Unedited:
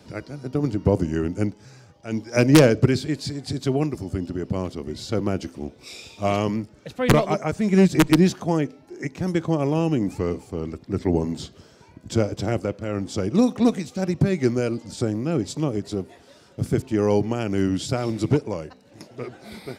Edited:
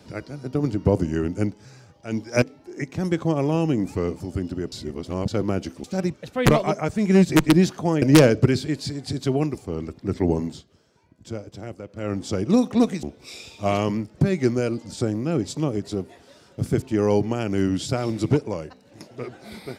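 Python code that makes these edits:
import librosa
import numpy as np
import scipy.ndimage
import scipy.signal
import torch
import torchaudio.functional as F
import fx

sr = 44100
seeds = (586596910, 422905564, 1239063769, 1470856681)

y = fx.edit(x, sr, fx.swap(start_s=2.42, length_s=1.56, other_s=8.65, other_length_s=1.78),
    fx.reverse_span(start_s=4.5, length_s=0.56),
    fx.swap(start_s=5.62, length_s=1.15, other_s=13.88, other_length_s=0.3),
    fx.fade_down_up(start_s=11.28, length_s=1.64, db=-11.5, fade_s=0.19), tone=tone)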